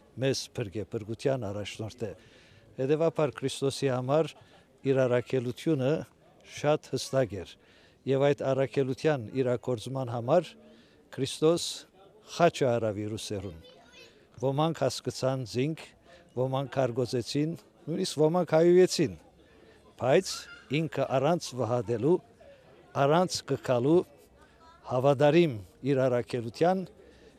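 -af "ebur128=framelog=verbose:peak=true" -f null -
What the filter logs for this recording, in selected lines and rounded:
Integrated loudness:
  I:         -28.6 LUFS
  Threshold: -39.6 LUFS
Loudness range:
  LRA:         4.7 LU
  Threshold: -49.5 LUFS
  LRA low:   -31.9 LUFS
  LRA high:  -27.2 LUFS
True peak:
  Peak:       -9.6 dBFS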